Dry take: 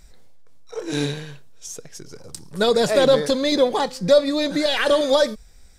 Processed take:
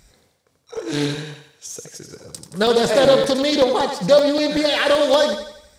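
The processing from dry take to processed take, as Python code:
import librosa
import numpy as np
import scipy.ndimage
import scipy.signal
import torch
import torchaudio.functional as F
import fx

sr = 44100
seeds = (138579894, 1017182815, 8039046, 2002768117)

y = scipy.signal.sosfilt(scipy.signal.butter(2, 63.0, 'highpass', fs=sr, output='sos'), x)
y = fx.echo_thinned(y, sr, ms=87, feedback_pct=48, hz=300.0, wet_db=-6.5)
y = fx.buffer_crackle(y, sr, first_s=0.77, period_s=0.19, block=64, kind='zero')
y = fx.doppler_dist(y, sr, depth_ms=0.16)
y = F.gain(torch.from_numpy(y), 1.5).numpy()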